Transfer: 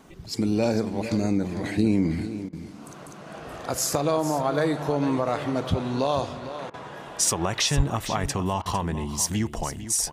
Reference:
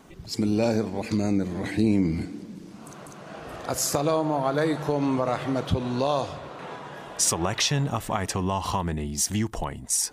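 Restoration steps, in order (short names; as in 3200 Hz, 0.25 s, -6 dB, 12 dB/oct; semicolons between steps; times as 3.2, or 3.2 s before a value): 7.76–7.88 HPF 140 Hz 24 dB/oct; interpolate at 2.49/6.7/8.62, 37 ms; inverse comb 0.453 s -12 dB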